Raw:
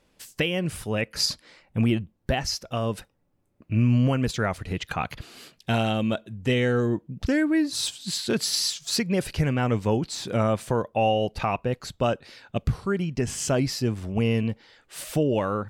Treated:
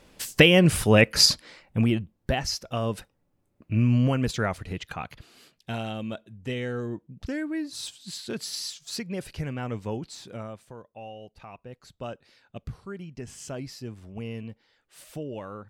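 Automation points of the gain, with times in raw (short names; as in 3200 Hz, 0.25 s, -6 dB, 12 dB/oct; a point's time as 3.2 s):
1.03 s +9.5 dB
1.9 s -1 dB
4.45 s -1 dB
5.17 s -8.5 dB
10.11 s -8.5 dB
10.68 s -19.5 dB
11.44 s -19.5 dB
12.06 s -12.5 dB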